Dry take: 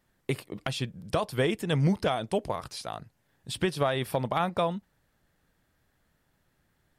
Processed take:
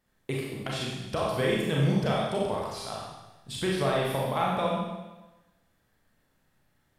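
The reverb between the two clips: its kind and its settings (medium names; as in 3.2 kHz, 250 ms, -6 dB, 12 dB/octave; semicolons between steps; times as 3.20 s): Schroeder reverb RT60 1.1 s, combs from 29 ms, DRR -4 dB; trim -4.5 dB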